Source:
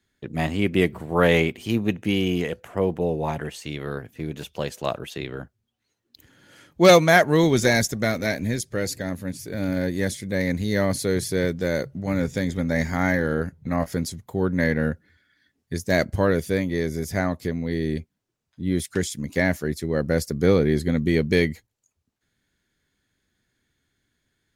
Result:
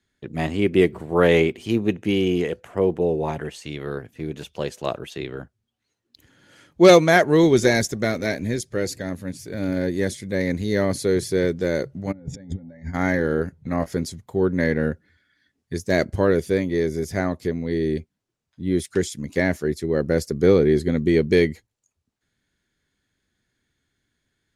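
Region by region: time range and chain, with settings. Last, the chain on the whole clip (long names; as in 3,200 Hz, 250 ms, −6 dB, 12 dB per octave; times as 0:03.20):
0:12.11–0:12.93: expanding power law on the bin magnitudes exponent 1.6 + compressor whose output falls as the input rises −32 dBFS, ratio −0.5 + hum with harmonics 120 Hz, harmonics 7, −63 dBFS −2 dB per octave
whole clip: low-pass filter 11,000 Hz 12 dB per octave; dynamic equaliser 380 Hz, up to +7 dB, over −36 dBFS, Q 2.1; level −1 dB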